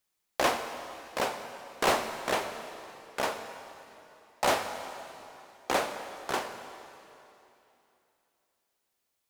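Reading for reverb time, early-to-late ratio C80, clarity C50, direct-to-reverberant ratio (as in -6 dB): 3.0 s, 8.5 dB, 8.0 dB, 7.0 dB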